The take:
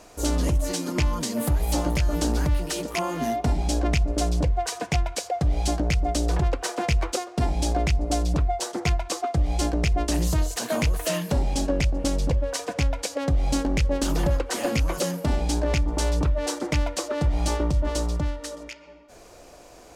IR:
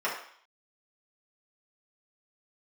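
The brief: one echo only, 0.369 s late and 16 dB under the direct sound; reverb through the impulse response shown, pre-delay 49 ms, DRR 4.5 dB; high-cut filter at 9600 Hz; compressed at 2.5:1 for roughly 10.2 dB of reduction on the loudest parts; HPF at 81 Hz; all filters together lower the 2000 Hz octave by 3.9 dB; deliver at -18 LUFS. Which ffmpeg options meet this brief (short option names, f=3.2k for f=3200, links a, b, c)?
-filter_complex "[0:a]highpass=81,lowpass=9.6k,equalizer=f=2k:t=o:g=-5,acompressor=threshold=-37dB:ratio=2.5,aecho=1:1:369:0.158,asplit=2[a][b];[1:a]atrim=start_sample=2205,adelay=49[c];[b][c]afir=irnorm=-1:irlink=0,volume=-15dB[d];[a][d]amix=inputs=2:normalize=0,volume=18.5dB"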